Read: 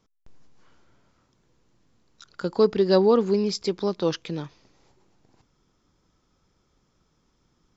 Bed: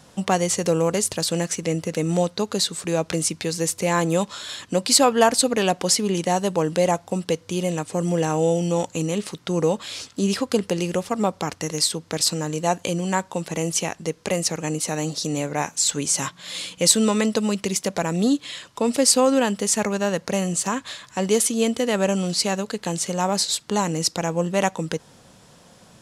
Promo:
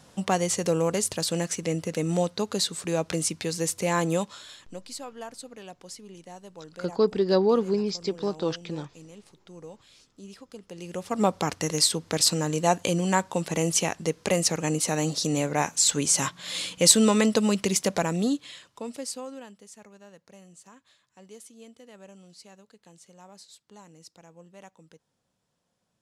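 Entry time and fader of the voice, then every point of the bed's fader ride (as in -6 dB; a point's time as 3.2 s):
4.40 s, -3.0 dB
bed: 4.13 s -4 dB
4.97 s -23 dB
10.6 s -23 dB
11.24 s -0.5 dB
17.94 s -0.5 dB
19.7 s -27.5 dB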